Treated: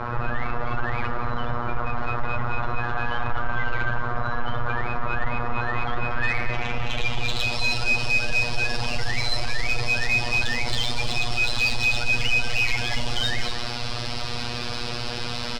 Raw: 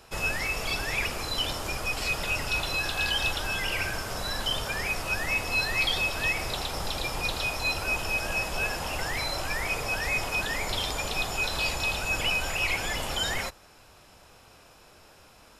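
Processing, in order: one-bit delta coder 32 kbps, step -30.5 dBFS; tone controls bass +9 dB, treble -3 dB; in parallel at -3 dB: peak limiter -21.5 dBFS, peak gain reduction 9 dB; on the sum: frequency shift -20 Hz; robot voice 120 Hz; low-pass sweep 1.3 kHz -> 4.7 kHz, 5.92–7.62 s; saturation -16.5 dBFS, distortion -13 dB; on a send: delay 238 ms -12.5 dB; on the sum: trim +3.5 dB

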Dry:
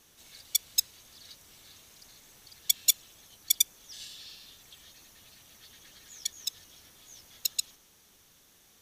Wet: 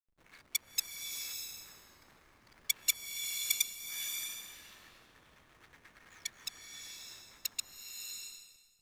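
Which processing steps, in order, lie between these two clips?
high-order bell 1.5 kHz +13.5 dB; short-mantissa float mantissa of 4-bit; hysteresis with a dead band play -40.5 dBFS; swelling reverb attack 630 ms, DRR 2.5 dB; trim -7.5 dB

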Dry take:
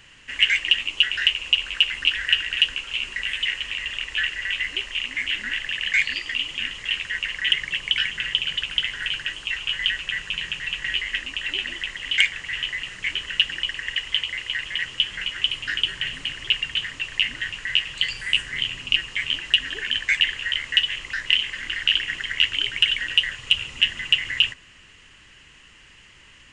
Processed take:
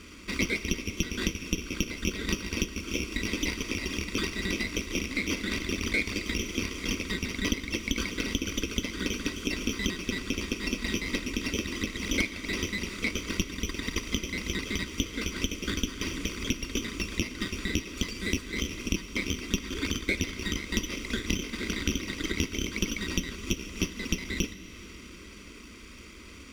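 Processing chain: comb filter that takes the minimum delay 0.86 ms; high-pass 94 Hz 6 dB/octave; tilt shelf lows +7.5 dB, about 1.1 kHz; compression 3:1, threshold -35 dBFS, peak gain reduction 16 dB; static phaser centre 330 Hz, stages 4; on a send: reverberation RT60 4.7 s, pre-delay 53 ms, DRR 13 dB; on the sum: trim +9 dB

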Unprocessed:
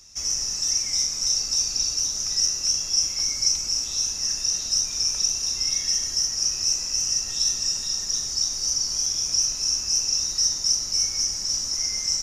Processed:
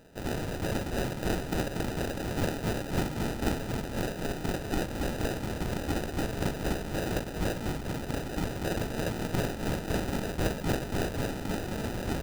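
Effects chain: sample-rate reducer 1.1 kHz, jitter 0%; trim -6.5 dB

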